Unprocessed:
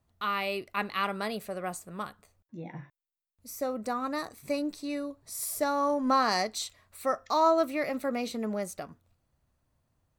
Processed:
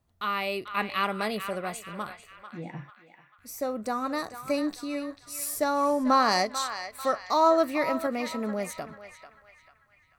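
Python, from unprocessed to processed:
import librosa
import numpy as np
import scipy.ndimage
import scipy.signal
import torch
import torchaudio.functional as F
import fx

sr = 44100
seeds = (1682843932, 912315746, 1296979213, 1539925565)

p1 = fx.tremolo_shape(x, sr, shape='saw_up', hz=0.62, depth_pct=30)
p2 = p1 + fx.echo_banded(p1, sr, ms=442, feedback_pct=51, hz=2000.0, wet_db=-8, dry=0)
y = F.gain(torch.from_numpy(p2), 3.5).numpy()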